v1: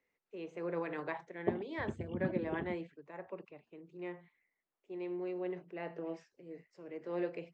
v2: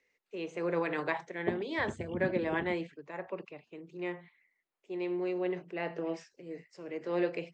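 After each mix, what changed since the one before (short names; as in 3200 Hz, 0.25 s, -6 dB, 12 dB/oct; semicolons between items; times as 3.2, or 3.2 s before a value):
first voice +5.5 dB; master: add high shelf 2600 Hz +8.5 dB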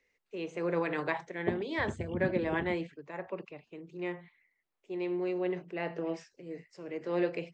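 master: add low shelf 84 Hz +11.5 dB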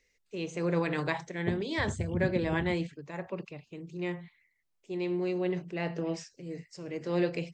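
second voice -5.0 dB; master: remove three-band isolator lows -12 dB, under 250 Hz, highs -12 dB, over 3000 Hz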